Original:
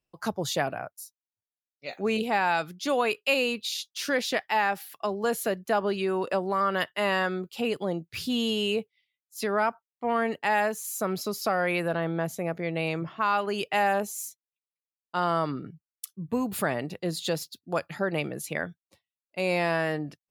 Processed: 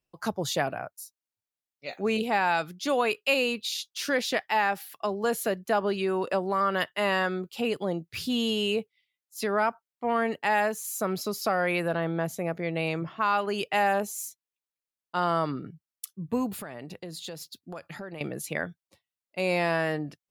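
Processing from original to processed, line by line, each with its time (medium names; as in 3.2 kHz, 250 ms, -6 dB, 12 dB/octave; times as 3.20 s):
16.52–18.21 s: compression 5:1, threshold -36 dBFS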